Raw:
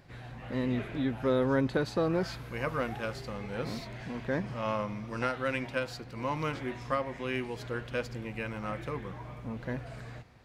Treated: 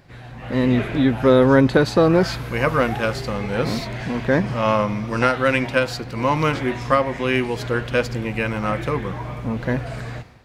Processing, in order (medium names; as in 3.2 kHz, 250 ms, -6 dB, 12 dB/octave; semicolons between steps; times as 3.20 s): level rider gain up to 8 dB; trim +5.5 dB